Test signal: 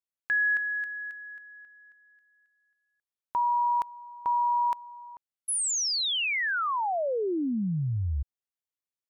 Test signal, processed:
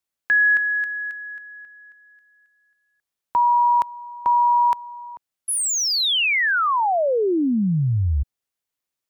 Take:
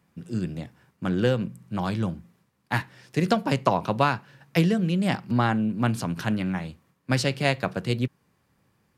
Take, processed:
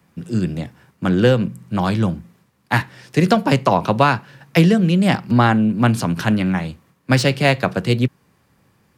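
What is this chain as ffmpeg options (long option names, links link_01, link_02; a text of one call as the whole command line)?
ffmpeg -i in.wav -filter_complex "[0:a]acrossover=split=180|1200|3500[link_01][link_02][link_03][link_04];[link_04]asoftclip=type=tanh:threshold=-28dB[link_05];[link_01][link_02][link_03][link_05]amix=inputs=4:normalize=0,alimiter=level_in=9.5dB:limit=-1dB:release=50:level=0:latency=1,volume=-1dB" out.wav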